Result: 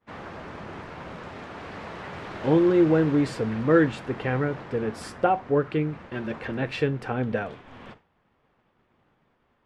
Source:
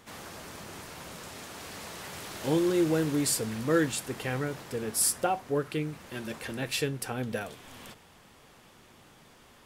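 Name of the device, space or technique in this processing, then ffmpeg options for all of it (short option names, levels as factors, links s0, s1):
hearing-loss simulation: -af "lowpass=2000,agate=range=0.0224:threshold=0.00501:ratio=3:detection=peak,volume=2.11"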